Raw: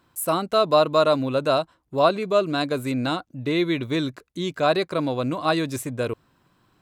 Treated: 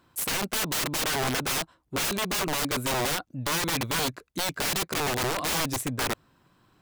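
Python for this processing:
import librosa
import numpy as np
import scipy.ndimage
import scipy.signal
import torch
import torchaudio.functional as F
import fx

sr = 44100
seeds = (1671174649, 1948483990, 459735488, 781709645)

y = fx.notch_comb(x, sr, f0_hz=660.0, at=(1.01, 1.43))
y = (np.mod(10.0 ** (22.5 / 20.0) * y + 1.0, 2.0) - 1.0) / 10.0 ** (22.5 / 20.0)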